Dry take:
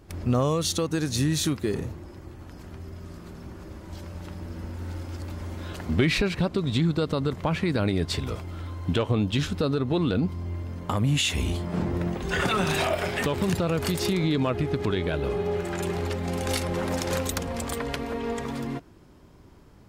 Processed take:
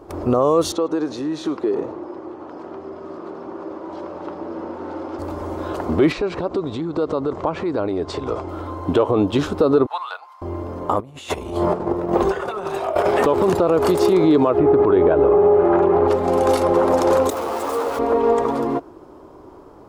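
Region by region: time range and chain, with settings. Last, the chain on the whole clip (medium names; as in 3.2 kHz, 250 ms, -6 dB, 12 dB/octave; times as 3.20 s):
0.72–5.19 s: compression, threshold -28 dBFS + band-pass 200–4400 Hz + delay 103 ms -20.5 dB
6.12–8.49 s: low-pass 7.8 kHz 24 dB/octave + compression 12:1, threshold -28 dBFS
9.86–10.42 s: steep high-pass 850 Hz + upward expansion, over -47 dBFS
11.00–13.06 s: band-stop 290 Hz, Q 5.1 + compressor with a negative ratio -31 dBFS, ratio -0.5
14.58–16.08 s: low-pass 1.9 kHz + level flattener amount 50%
17.30–17.99 s: one-bit comparator + bass shelf 150 Hz -11 dB + three-phase chorus
whole clip: high-order bell 610 Hz +15.5 dB 2.5 oct; peak limiter -7 dBFS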